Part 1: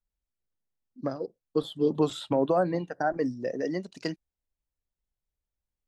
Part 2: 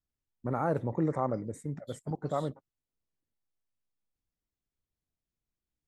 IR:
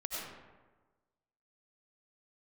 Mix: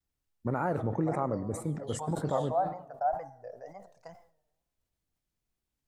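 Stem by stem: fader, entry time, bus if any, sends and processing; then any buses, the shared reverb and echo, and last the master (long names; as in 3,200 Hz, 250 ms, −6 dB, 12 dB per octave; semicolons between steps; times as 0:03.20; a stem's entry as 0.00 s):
−10.0 dB, 0.00 s, send −21 dB, drawn EQ curve 100 Hz 0 dB, 320 Hz −29 dB, 720 Hz +11 dB, 3,500 Hz −24 dB, 6,800 Hz −7 dB
+3.0 dB, 0.00 s, send −15.5 dB, downward compressor 3 to 1, threshold −31 dBFS, peak gain reduction 6 dB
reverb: on, RT60 1.3 s, pre-delay 55 ms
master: tape wow and flutter 120 cents; level that may fall only so fast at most 110 dB per second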